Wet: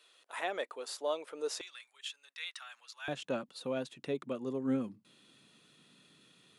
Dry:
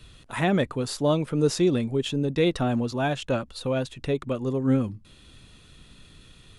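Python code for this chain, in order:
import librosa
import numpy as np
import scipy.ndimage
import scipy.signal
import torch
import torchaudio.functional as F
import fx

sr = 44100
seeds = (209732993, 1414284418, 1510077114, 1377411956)

y = fx.highpass(x, sr, hz=fx.steps((0.0, 460.0), (1.61, 1400.0), (3.08, 170.0)), slope=24)
y = y * librosa.db_to_amplitude(-9.0)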